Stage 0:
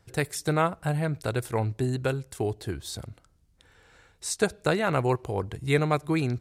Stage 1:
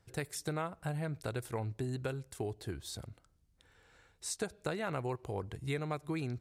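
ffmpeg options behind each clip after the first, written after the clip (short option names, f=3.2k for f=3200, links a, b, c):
-af "acompressor=threshold=-26dB:ratio=4,volume=-7dB"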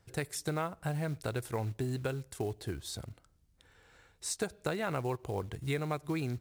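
-af "acrusher=bits=6:mode=log:mix=0:aa=0.000001,volume=2.5dB"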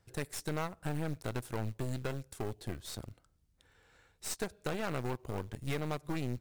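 -af "aeval=exprs='0.106*(cos(1*acos(clip(val(0)/0.106,-1,1)))-cos(1*PI/2))+0.015*(cos(8*acos(clip(val(0)/0.106,-1,1)))-cos(8*PI/2))':c=same,volume=-3.5dB"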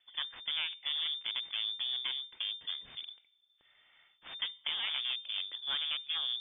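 -af "lowpass=f=3.1k:t=q:w=0.5098,lowpass=f=3.1k:t=q:w=0.6013,lowpass=f=3.1k:t=q:w=0.9,lowpass=f=3.1k:t=q:w=2.563,afreqshift=-3600"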